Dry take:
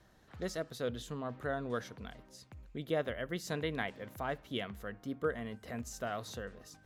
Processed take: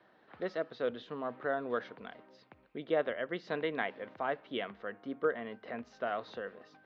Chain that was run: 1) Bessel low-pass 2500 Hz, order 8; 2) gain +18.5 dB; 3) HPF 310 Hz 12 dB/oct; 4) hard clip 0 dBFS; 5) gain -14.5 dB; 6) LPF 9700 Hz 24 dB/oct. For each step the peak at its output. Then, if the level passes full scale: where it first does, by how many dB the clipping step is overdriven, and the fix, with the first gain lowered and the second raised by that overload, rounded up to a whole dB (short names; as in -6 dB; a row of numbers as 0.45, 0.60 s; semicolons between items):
-21.0, -2.5, -3.0, -3.0, -17.5, -17.5 dBFS; no overload